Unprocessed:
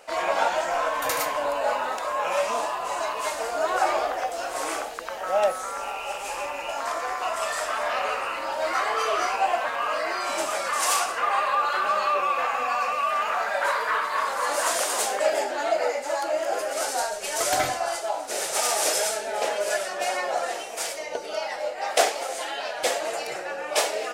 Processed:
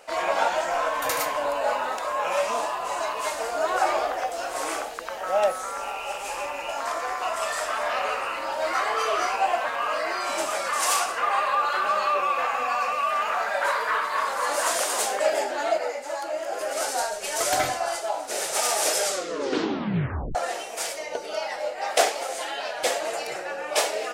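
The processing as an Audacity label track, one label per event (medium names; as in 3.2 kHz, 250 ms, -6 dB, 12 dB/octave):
15.780000	16.610000	gain -4 dB
18.980000	18.980000	tape stop 1.37 s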